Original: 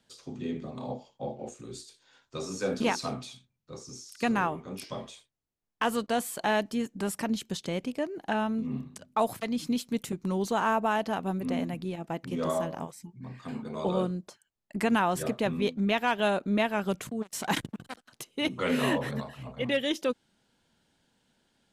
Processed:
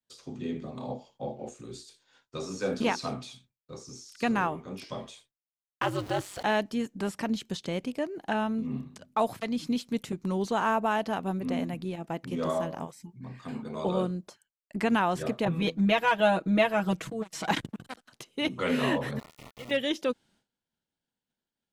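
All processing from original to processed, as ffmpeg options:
-filter_complex "[0:a]asettb=1/sr,asplit=3[a][b][c];[a]atrim=end=5.824[d];[b]atrim=start=5.82:end=6.43,asetpts=PTS-STARTPTS,afade=t=in:d=0.004:c=qsin,afade=t=out:st=0.606:d=0.004:c=qsin,aeval=exprs='val(0)+0.5*0.0178*sgn(val(0))':c=same,aeval=exprs='val(0)*sin(2*PI*98*n/s)':c=same[e];[c]atrim=start=6.426[f];[d][e]acrossfade=d=0.004:c1=hsin:c2=qsin[g];[g][f]acrossfade=d=0.004:c1=qsin:c2=hsin,asettb=1/sr,asplit=3[h][i][j];[h]atrim=end=15.454[k];[i]atrim=start=15.45:end=17.51,asetpts=PTS-STARTPTS,afade=t=in:d=0.004:c=qsin,afade=t=out:st=2.056:d=0.004:c=qsin,aecho=1:1:6.2:0.95,atrim=end_sample=90846,adynamicequalizer=threshold=0.02:dfrequency=1500:dqfactor=0.7:tfrequency=1500:tqfactor=0.7:attack=5:release=100:ratio=0.375:range=2.5:mode=cutabove:tftype=highshelf[l];[j]atrim=start=17.506[m];[k][l]acrossfade=d=0.004:c1=hsin:c2=qsin[n];[n][m]acrossfade=d=0.004:c1=qsin:c2=hsin,asettb=1/sr,asplit=3[o][p][q];[o]atrim=end=19.194[r];[p]atrim=start=19.19:end=19.71,asetpts=PTS-STARTPTS,afade=t=in:d=0.004:c=qsin,afade=t=out:st=0.516:d=0.004:c=qsin,acompressor=threshold=-41dB:ratio=3:attack=3.2:release=140:knee=1:detection=peak,aeval=exprs='val(0)*gte(abs(val(0)),0.01)':c=same,asuperstop=centerf=1600:order=8:qfactor=4.9[s];[q]atrim=start=19.706[t];[r][s]acrossfade=d=0.004:c1=hsin:c2=qsin[u];[u][t]acrossfade=d=0.004:c1=qsin:c2=hsin,agate=range=-33dB:threshold=-58dB:ratio=3:detection=peak,acrossover=split=6300[v][w];[w]acompressor=threshold=-52dB:ratio=4:attack=1:release=60[x];[v][x]amix=inputs=2:normalize=0"

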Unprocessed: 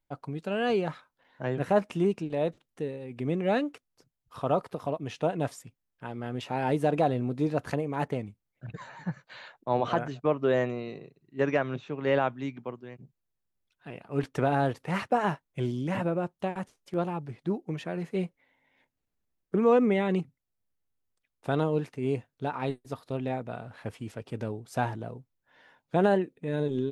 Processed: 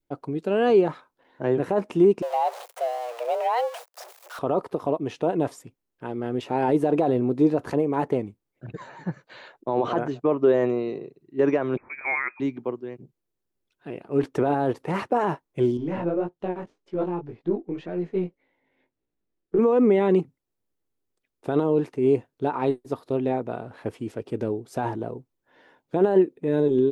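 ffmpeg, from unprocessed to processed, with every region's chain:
-filter_complex "[0:a]asettb=1/sr,asplit=3[a][b][c];[a]atrim=end=2.224[d];[b]atrim=start=2.22:end=4.39,asetpts=PTS-STARTPTS,afade=t=in:d=0.004:c=qsin,afade=t=out:st=2.166:d=0.004:c=qsin,aeval=exprs='val(0)+0.5*0.015*sgn(val(0))':c=same,highpass=f=320:w=0.5412,highpass=f=320:w=1.3066,afreqshift=230[e];[c]atrim=start=4.386[f];[d][e]acrossfade=d=0.004:c1=hsin:c2=qsin[g];[g][f]acrossfade=d=0.004:c1=qsin:c2=hsin,asettb=1/sr,asplit=3[h][i][j];[h]atrim=end=11.774[k];[i]atrim=start=11.77:end=12.4,asetpts=PTS-STARTPTS,afade=t=in:d=0.004:c=qsin,afade=t=out:st=0.626:d=0.004:c=qsin,highpass=380,lowpass=f=2.3k:t=q:w=0.5098,lowpass=f=2.3k:t=q:w=0.6013,lowpass=f=2.3k:t=q:w=0.9,lowpass=f=2.3k:t=q:w=2.563,afreqshift=-2700[l];[j]atrim=start=12.396[m];[k][l]acrossfade=d=0.004:c1=hsin:c2=qsin[n];[n][m]acrossfade=d=0.004:c1=qsin:c2=hsin,asettb=1/sr,asplit=3[o][p][q];[o]atrim=end=15.774[r];[p]atrim=start=15.77:end=19.59,asetpts=PTS-STARTPTS,afade=t=in:d=0.004:c=qsin,afade=t=out:st=3.816:d=0.004:c=qsin,aeval=exprs='if(lt(val(0),0),0.708*val(0),val(0))':c=same,lowpass=4.3k,flanger=delay=17:depth=6.1:speed=1.8[s];[q]atrim=start=19.586[t];[r][s]acrossfade=d=0.004:c1=hsin:c2=qsin[u];[u][t]acrossfade=d=0.004:c1=qsin:c2=hsin,adynamicequalizer=threshold=0.00891:dfrequency=950:dqfactor=1.7:tfrequency=950:tqfactor=1.7:attack=5:release=100:ratio=0.375:range=3:mode=boostabove:tftype=bell,alimiter=limit=-18.5dB:level=0:latency=1:release=19,equalizer=f=360:w=1.2:g=12"

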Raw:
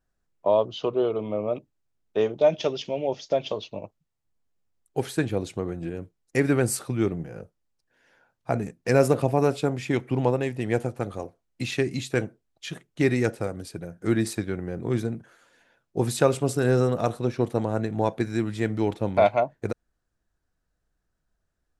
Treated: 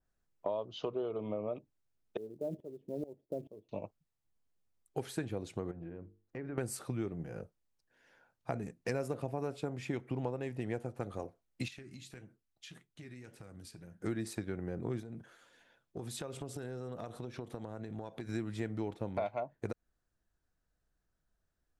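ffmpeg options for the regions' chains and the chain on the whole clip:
-filter_complex "[0:a]asettb=1/sr,asplit=3[a][b][c];[a]atrim=end=2.174[d];[b]atrim=start=2.17:end=3.69,asetpts=PTS-STARTPTS,afade=t=in:d=0.004:c=qsin,afade=t=out:st=1.516:d=0.004:c=qsin,lowpass=f=360:t=q:w=1.7,acrusher=bits=8:mode=log:mix=0:aa=0.000001,aeval=exprs='val(0)*pow(10,-21*if(lt(mod(-2.3*n/s,1),2*abs(-2.3)/1000),1-mod(-2.3*n/s,1)/(2*abs(-2.3)/1000),(mod(-2.3*n/s,1)-2*abs(-2.3)/1000)/(1-2*abs(-2.3)/1000))/20)':c=same[e];[c]atrim=start=3.686[f];[d][e]acrossfade=d=0.004:c1=hsin:c2=qsin[g];[g][f]acrossfade=d=0.004:c1=qsin:c2=hsin,asettb=1/sr,asplit=3[h][i][j];[h]atrim=end=5.714[k];[i]atrim=start=5.71:end=6.58,asetpts=PTS-STARTPTS,afade=t=in:d=0.004:c=qsin,afade=t=out:st=0.866:d=0.004:c=qsin,lowpass=1.7k,bandreject=f=50:t=h:w=6,bandreject=f=100:t=h:w=6,bandreject=f=150:t=h:w=6,bandreject=f=200:t=h:w=6,bandreject=f=250:t=h:w=6,bandreject=f=300:t=h:w=6,bandreject=f=350:t=h:w=6,bandreject=f=400:t=h:w=6,bandreject=f=450:t=h:w=6,acompressor=threshold=-39dB:ratio=3:attack=3.2:release=140:knee=1:detection=peak[l];[j]atrim=start=6.576[m];[k][l]acrossfade=d=0.004:c1=hsin:c2=qsin[n];[n][m]acrossfade=d=0.004:c1=qsin:c2=hsin,asettb=1/sr,asplit=3[o][p][q];[o]atrim=end=11.684[r];[p]atrim=start=11.68:end=14,asetpts=PTS-STARTPTS,afade=t=in:d=0.004:c=qsin,afade=t=out:st=2.316:d=0.004:c=qsin,equalizer=f=570:w=0.92:g=-7.5,acompressor=threshold=-37dB:ratio=12:attack=3.2:release=140:knee=1:detection=peak,flanger=delay=6.1:depth=9.9:regen=-70:speed=1.7:shape=sinusoidal[s];[q]atrim=start=13.996[t];[r][s]acrossfade=d=0.004:c1=hsin:c2=qsin[u];[u][t]acrossfade=d=0.004:c1=qsin:c2=hsin,asettb=1/sr,asplit=3[v][w][x];[v]atrim=end=15.004[y];[w]atrim=start=15:end=18.29,asetpts=PTS-STARTPTS,afade=t=in:d=0.004:c=qsin,afade=t=out:st=3.286:d=0.004:c=qsin,equalizer=f=3.4k:t=o:w=0.26:g=5,acompressor=threshold=-33dB:ratio=12:attack=3.2:release=140:knee=1:detection=peak[z];[x]atrim=start=18.286[aa];[y][z]acrossfade=d=0.004:c1=hsin:c2=qsin[ab];[ab][aa]acrossfade=d=0.004:c1=qsin:c2=hsin,acompressor=threshold=-29dB:ratio=5,adynamicequalizer=threshold=0.00398:dfrequency=2000:dqfactor=0.7:tfrequency=2000:tqfactor=0.7:attack=5:release=100:ratio=0.375:range=2:mode=cutabove:tftype=highshelf,volume=-4.5dB"

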